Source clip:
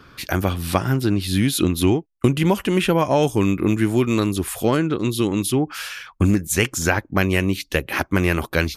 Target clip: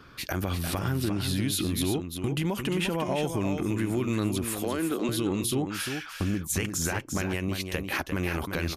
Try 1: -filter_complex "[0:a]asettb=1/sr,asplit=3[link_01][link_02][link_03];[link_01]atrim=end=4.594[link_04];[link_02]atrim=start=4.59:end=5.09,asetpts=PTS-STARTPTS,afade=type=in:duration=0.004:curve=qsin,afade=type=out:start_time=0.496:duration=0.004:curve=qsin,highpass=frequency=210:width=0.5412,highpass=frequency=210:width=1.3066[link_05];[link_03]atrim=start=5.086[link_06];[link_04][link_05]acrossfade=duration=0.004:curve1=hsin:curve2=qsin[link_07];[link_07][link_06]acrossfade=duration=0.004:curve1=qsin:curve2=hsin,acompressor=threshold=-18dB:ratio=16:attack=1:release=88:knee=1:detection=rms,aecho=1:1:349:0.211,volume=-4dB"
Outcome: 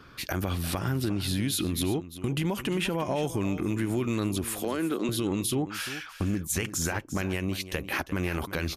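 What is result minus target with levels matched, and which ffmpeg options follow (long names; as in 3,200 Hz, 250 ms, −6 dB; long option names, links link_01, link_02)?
echo-to-direct −6.5 dB
-filter_complex "[0:a]asettb=1/sr,asplit=3[link_01][link_02][link_03];[link_01]atrim=end=4.594[link_04];[link_02]atrim=start=4.59:end=5.09,asetpts=PTS-STARTPTS,afade=type=in:duration=0.004:curve=qsin,afade=type=out:start_time=0.496:duration=0.004:curve=qsin,highpass=frequency=210:width=0.5412,highpass=frequency=210:width=1.3066[link_05];[link_03]atrim=start=5.086[link_06];[link_04][link_05]acrossfade=duration=0.004:curve1=hsin:curve2=qsin[link_07];[link_07][link_06]acrossfade=duration=0.004:curve1=qsin:curve2=hsin,acompressor=threshold=-18dB:ratio=16:attack=1:release=88:knee=1:detection=rms,aecho=1:1:349:0.447,volume=-4dB"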